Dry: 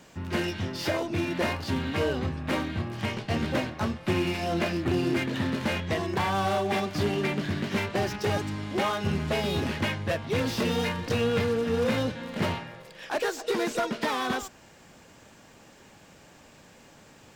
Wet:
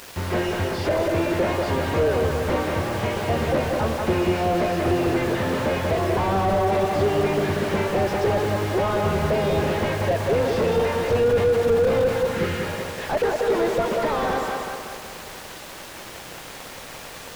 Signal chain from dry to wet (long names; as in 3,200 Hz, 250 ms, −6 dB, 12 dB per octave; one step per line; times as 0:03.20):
time-frequency box erased 0:12.33–0:12.64, 420–1,200 Hz
graphic EQ with 10 bands 125 Hz −7 dB, 250 Hz −10 dB, 500 Hz +5 dB
in parallel at +2 dB: downward compressor, threshold −36 dBFS, peak gain reduction 13.5 dB
on the sum: pitch vibrato 0.72 Hz 32 cents
bit-depth reduction 6 bits, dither triangular
on a send: feedback echo with a low-pass in the loop 187 ms, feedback 58%, low-pass 2,600 Hz, level −5.5 dB
on the sum: slew-rate limiting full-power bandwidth 41 Hz
level +5.5 dB